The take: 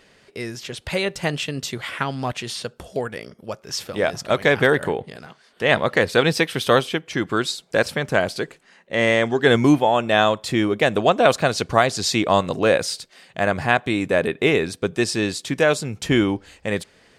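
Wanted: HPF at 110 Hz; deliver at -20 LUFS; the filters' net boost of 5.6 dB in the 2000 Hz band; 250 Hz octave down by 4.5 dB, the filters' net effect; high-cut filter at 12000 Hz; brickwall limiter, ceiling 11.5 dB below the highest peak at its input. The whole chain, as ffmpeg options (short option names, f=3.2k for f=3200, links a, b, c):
-af "highpass=110,lowpass=12k,equalizer=f=250:t=o:g=-6,equalizer=f=2k:t=o:g=7,volume=3dB,alimiter=limit=-5.5dB:level=0:latency=1"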